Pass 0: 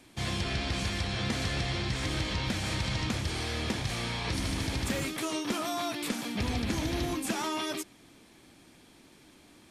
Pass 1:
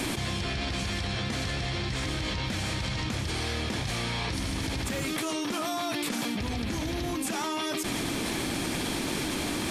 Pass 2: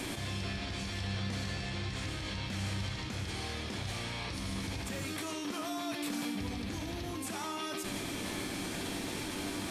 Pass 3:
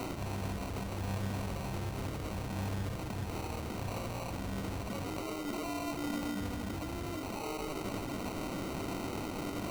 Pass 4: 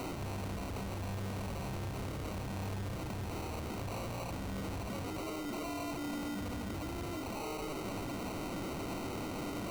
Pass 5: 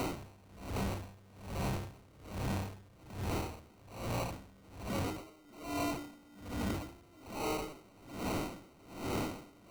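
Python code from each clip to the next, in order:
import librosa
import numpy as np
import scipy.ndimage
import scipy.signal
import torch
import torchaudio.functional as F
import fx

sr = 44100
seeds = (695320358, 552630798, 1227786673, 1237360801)

y1 = fx.env_flatten(x, sr, amount_pct=100)
y1 = F.gain(torch.from_numpy(y1), -3.0).numpy()
y2 = fx.comb_fb(y1, sr, f0_hz=97.0, decay_s=1.5, harmonics='all', damping=0.0, mix_pct=80)
y2 = F.gain(torch.from_numpy(y2), 4.5).numpy()
y3 = fx.sample_hold(y2, sr, seeds[0], rate_hz=1700.0, jitter_pct=0)
y4 = 10.0 ** (-38.5 / 20.0) * np.tanh(y3 / 10.0 ** (-38.5 / 20.0))
y4 = F.gain(torch.from_numpy(y4), 3.0).numpy()
y5 = y4 * 10.0 ** (-27 * (0.5 - 0.5 * np.cos(2.0 * np.pi * 1.2 * np.arange(len(y4)) / sr)) / 20.0)
y5 = F.gain(torch.from_numpy(y5), 5.5).numpy()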